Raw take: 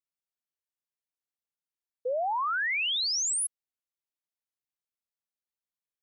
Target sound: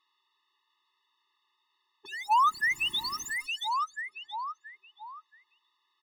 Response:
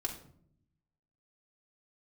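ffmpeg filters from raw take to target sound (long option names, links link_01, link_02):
-filter_complex "[0:a]highpass=frequency=450:width=0.5412,highpass=frequency=450:width=1.3066,equalizer=frequency=1300:width_type=q:width=4:gain=3,equalizer=frequency=2100:width_type=q:width=4:gain=-4,equalizer=frequency=3600:width_type=q:width=4:gain=9,lowpass=frequency=4800:width=0.5412,lowpass=frequency=4800:width=1.3066,acrossover=split=3400[link_01][link_02];[link_02]acompressor=threshold=-40dB:ratio=4:attack=1:release=60[link_03];[link_01][link_03]amix=inputs=2:normalize=0,asplit=2[link_04][link_05];[link_05]adelay=676,lowpass=frequency=1300:poles=1,volume=-15dB,asplit=2[link_06][link_07];[link_07]adelay=676,lowpass=frequency=1300:poles=1,volume=0.43,asplit=2[link_08][link_09];[link_09]adelay=676,lowpass=frequency=1300:poles=1,volume=0.43,asplit=2[link_10][link_11];[link_11]adelay=676,lowpass=frequency=1300:poles=1,volume=0.43[link_12];[link_04][link_06][link_08][link_10][link_12]amix=inputs=5:normalize=0,asplit=2[link_13][link_14];[link_14]highpass=frequency=720:poles=1,volume=34dB,asoftclip=type=tanh:threshold=-21dB[link_15];[link_13][link_15]amix=inputs=2:normalize=0,lowpass=frequency=1100:poles=1,volume=-6dB,afftfilt=real='re*eq(mod(floor(b*sr/1024/430),2),0)':imag='im*eq(mod(floor(b*sr/1024/430),2),0)':win_size=1024:overlap=0.75,volume=6dB"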